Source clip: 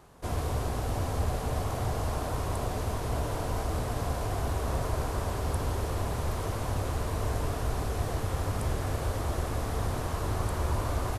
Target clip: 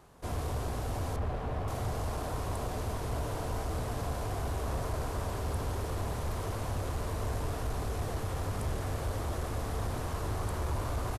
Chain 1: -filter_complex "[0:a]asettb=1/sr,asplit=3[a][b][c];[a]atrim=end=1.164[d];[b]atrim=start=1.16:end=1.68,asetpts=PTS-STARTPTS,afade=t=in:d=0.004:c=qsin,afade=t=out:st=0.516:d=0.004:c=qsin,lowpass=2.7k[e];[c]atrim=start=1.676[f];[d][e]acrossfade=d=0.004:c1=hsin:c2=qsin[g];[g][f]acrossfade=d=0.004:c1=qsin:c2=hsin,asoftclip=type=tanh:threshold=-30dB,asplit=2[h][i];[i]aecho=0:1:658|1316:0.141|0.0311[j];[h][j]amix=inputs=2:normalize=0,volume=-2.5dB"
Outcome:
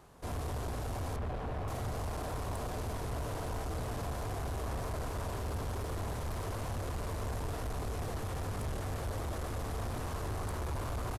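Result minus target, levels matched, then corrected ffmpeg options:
soft clip: distortion +9 dB
-filter_complex "[0:a]asettb=1/sr,asplit=3[a][b][c];[a]atrim=end=1.164[d];[b]atrim=start=1.16:end=1.68,asetpts=PTS-STARTPTS,afade=t=in:d=0.004:c=qsin,afade=t=out:st=0.516:d=0.004:c=qsin,lowpass=2.7k[e];[c]atrim=start=1.676[f];[d][e]acrossfade=d=0.004:c1=hsin:c2=qsin[g];[g][f]acrossfade=d=0.004:c1=qsin:c2=hsin,asoftclip=type=tanh:threshold=-22dB,asplit=2[h][i];[i]aecho=0:1:658|1316:0.141|0.0311[j];[h][j]amix=inputs=2:normalize=0,volume=-2.5dB"

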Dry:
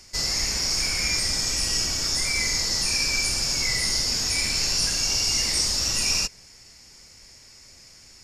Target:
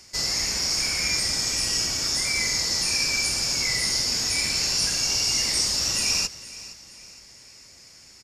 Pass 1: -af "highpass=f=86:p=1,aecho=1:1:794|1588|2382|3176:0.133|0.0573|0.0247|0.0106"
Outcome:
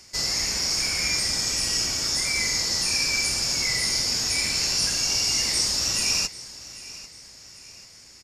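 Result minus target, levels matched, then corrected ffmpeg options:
echo 0.328 s late
-af "highpass=f=86:p=1,aecho=1:1:466|932|1398|1864:0.133|0.0573|0.0247|0.0106"

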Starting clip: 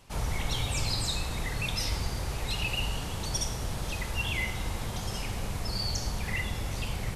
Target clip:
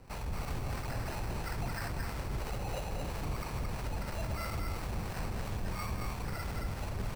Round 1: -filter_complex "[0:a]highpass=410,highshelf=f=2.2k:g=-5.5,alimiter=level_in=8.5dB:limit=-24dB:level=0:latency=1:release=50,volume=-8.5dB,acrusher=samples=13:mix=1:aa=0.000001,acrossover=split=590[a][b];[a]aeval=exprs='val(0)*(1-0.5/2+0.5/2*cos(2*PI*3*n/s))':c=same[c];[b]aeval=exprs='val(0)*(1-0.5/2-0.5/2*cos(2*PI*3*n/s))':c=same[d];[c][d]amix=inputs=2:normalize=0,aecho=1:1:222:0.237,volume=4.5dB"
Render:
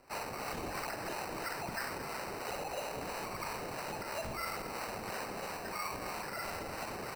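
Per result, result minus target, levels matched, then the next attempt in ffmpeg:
echo-to-direct -9 dB; 500 Hz band +3.5 dB
-filter_complex "[0:a]highpass=410,highshelf=f=2.2k:g=-5.5,alimiter=level_in=8.5dB:limit=-24dB:level=0:latency=1:release=50,volume=-8.5dB,acrusher=samples=13:mix=1:aa=0.000001,acrossover=split=590[a][b];[a]aeval=exprs='val(0)*(1-0.5/2+0.5/2*cos(2*PI*3*n/s))':c=same[c];[b]aeval=exprs='val(0)*(1-0.5/2-0.5/2*cos(2*PI*3*n/s))':c=same[d];[c][d]amix=inputs=2:normalize=0,aecho=1:1:222:0.668,volume=4.5dB"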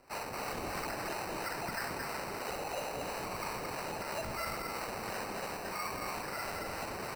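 500 Hz band +3.5 dB
-filter_complex "[0:a]highshelf=f=2.2k:g=-5.5,alimiter=level_in=8.5dB:limit=-24dB:level=0:latency=1:release=50,volume=-8.5dB,acrusher=samples=13:mix=1:aa=0.000001,acrossover=split=590[a][b];[a]aeval=exprs='val(0)*(1-0.5/2+0.5/2*cos(2*PI*3*n/s))':c=same[c];[b]aeval=exprs='val(0)*(1-0.5/2-0.5/2*cos(2*PI*3*n/s))':c=same[d];[c][d]amix=inputs=2:normalize=0,aecho=1:1:222:0.668,volume=4.5dB"

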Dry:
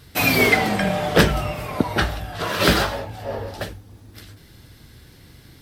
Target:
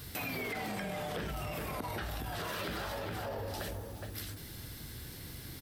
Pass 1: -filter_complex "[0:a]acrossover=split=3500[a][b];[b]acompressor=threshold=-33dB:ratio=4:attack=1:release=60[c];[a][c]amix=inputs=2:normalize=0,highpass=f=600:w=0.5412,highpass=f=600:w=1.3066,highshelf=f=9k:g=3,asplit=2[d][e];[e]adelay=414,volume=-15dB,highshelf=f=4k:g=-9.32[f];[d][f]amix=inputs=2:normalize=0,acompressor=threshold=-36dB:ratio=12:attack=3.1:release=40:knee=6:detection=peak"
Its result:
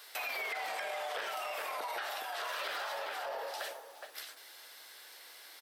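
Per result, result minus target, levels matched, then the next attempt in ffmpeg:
8000 Hz band -2.5 dB; 500 Hz band -2.0 dB
-filter_complex "[0:a]acrossover=split=3500[a][b];[b]acompressor=threshold=-33dB:ratio=4:attack=1:release=60[c];[a][c]amix=inputs=2:normalize=0,highpass=f=600:w=0.5412,highpass=f=600:w=1.3066,highshelf=f=9k:g=12.5,asplit=2[d][e];[e]adelay=414,volume=-15dB,highshelf=f=4k:g=-9.32[f];[d][f]amix=inputs=2:normalize=0,acompressor=threshold=-36dB:ratio=12:attack=3.1:release=40:knee=6:detection=peak"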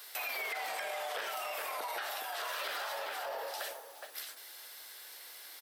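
500 Hz band -2.0 dB
-filter_complex "[0:a]acrossover=split=3500[a][b];[b]acompressor=threshold=-33dB:ratio=4:attack=1:release=60[c];[a][c]amix=inputs=2:normalize=0,highshelf=f=9k:g=12.5,asplit=2[d][e];[e]adelay=414,volume=-15dB,highshelf=f=4k:g=-9.32[f];[d][f]amix=inputs=2:normalize=0,acompressor=threshold=-36dB:ratio=12:attack=3.1:release=40:knee=6:detection=peak"

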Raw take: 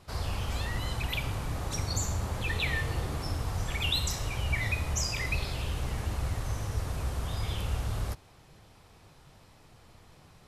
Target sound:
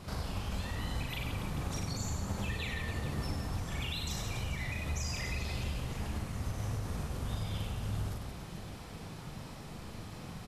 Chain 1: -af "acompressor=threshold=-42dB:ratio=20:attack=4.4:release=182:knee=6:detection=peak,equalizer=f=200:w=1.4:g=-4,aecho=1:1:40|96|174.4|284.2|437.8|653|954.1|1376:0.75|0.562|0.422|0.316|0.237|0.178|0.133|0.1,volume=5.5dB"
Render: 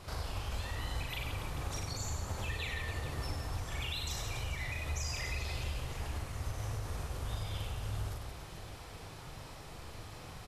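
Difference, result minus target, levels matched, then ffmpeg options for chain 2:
250 Hz band -6.5 dB
-af "acompressor=threshold=-42dB:ratio=20:attack=4.4:release=182:knee=6:detection=peak,equalizer=f=200:w=1.4:g=7.5,aecho=1:1:40|96|174.4|284.2|437.8|653|954.1|1376:0.75|0.562|0.422|0.316|0.237|0.178|0.133|0.1,volume=5.5dB"

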